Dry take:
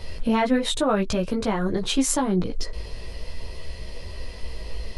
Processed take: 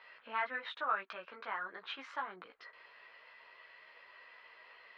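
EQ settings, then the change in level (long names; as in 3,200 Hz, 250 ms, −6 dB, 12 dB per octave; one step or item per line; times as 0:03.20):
four-pole ladder band-pass 1,700 Hz, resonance 40%
high-frequency loss of the air 310 metres
+5.5 dB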